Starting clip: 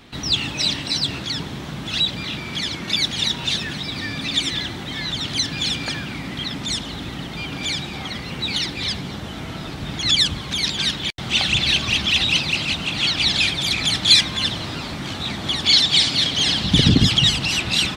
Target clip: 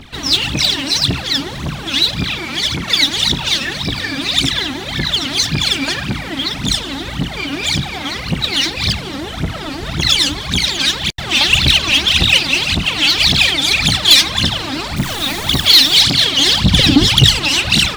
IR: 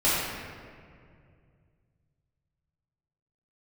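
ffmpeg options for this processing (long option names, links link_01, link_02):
-filter_complex "[0:a]asettb=1/sr,asplit=3[link_01][link_02][link_03];[link_01]atrim=end=14.964[link_04];[link_02]atrim=start=14.96:end=15.96,asetpts=PTS-STARTPTS,afade=type=in:duration=0.004:curve=qsin,afade=type=out:start_time=0.996:duration=0.004:curve=qsin,acrusher=bits=6:dc=4:mix=0:aa=0.000001[link_05];[link_03]atrim=start=15.956[link_06];[link_04][link_05]acrossfade=duration=0.004:curve1=hsin:curve2=qsin[link_07];[link_07][link_06]acrossfade=duration=0.004:curve1=qsin:curve2=hsin,aphaser=in_gain=1:out_gain=1:delay=3.9:decay=0.79:speed=1.8:type=triangular,asoftclip=type=tanh:threshold=-4.5dB,volume=3.5dB"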